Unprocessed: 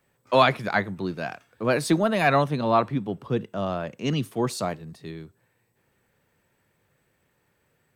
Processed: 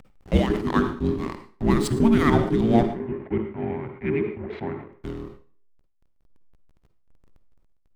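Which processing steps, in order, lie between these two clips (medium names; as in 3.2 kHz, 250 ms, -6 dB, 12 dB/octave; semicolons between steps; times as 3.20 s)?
octave divider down 2 oct, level +2 dB; dynamic bell 220 Hz, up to +7 dB, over -39 dBFS, Q 1.4; upward compressor, threshold -26 dBFS; frequency shift -450 Hz; square tremolo 2 Hz, depth 65%, duty 75%; hysteresis with a dead band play -29.5 dBFS; 2.83–4.92 s: cabinet simulation 110–2300 Hz, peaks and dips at 180 Hz -9 dB, 280 Hz -10 dB, 1.2 kHz -4 dB, 2.1 kHz +7 dB; reverberation RT60 0.55 s, pre-delay 46 ms, DRR 11 dB; decay stretcher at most 100 dB/s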